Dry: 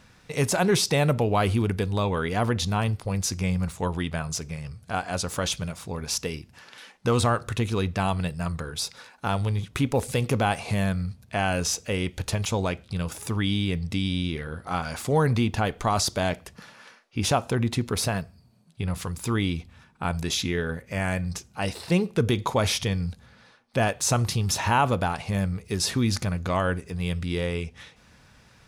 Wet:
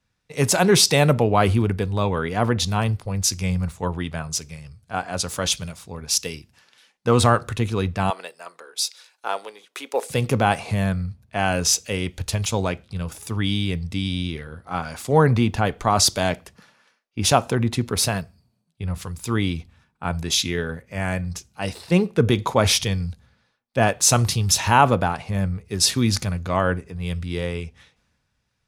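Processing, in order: 8.10–10.10 s: high-pass 390 Hz 24 dB/octave; three bands expanded up and down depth 70%; trim +3 dB

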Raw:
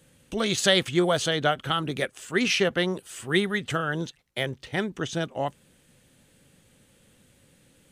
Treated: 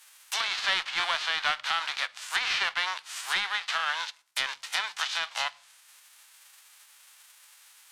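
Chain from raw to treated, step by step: formants flattened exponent 0.3; high-pass 920 Hz 24 dB/octave; saturation -18 dBFS, distortion -12 dB; on a send at -21 dB: reverberation RT60 0.55 s, pre-delay 3 ms; on the sum: dynamic bell 4.3 kHz, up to +7 dB, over -44 dBFS, Q 1.5; in parallel at -2.5 dB: peak limiter -21.5 dBFS, peak gain reduction 9.5 dB; on the sum: low-pass that closes with the level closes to 2.5 kHz, closed at -22 dBFS

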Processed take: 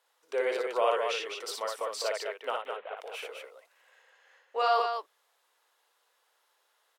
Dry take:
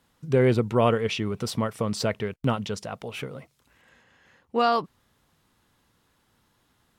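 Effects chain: 2.56–2.97 s: CVSD coder 16 kbps; steep high-pass 460 Hz 36 dB/octave; on a send: loudspeakers at several distances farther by 20 m -3 dB, 71 m -5 dB; on the sum: trim -5 dB

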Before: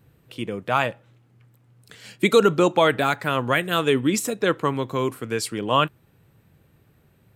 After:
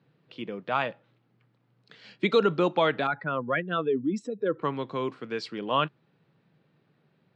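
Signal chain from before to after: 3.07–4.62 s: spectral contrast enhancement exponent 1.9; elliptic band-pass 150–4600 Hz, stop band 50 dB; trim -5.5 dB

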